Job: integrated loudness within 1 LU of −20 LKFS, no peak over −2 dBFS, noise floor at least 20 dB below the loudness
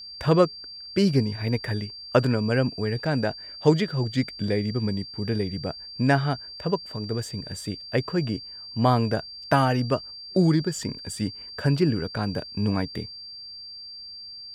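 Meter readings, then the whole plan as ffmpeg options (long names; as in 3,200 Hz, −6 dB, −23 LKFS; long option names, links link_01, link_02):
interfering tone 4,700 Hz; level of the tone −38 dBFS; integrated loudness −25.5 LKFS; sample peak −6.0 dBFS; target loudness −20.0 LKFS
→ -af "bandreject=frequency=4700:width=30"
-af "volume=5.5dB,alimiter=limit=-2dB:level=0:latency=1"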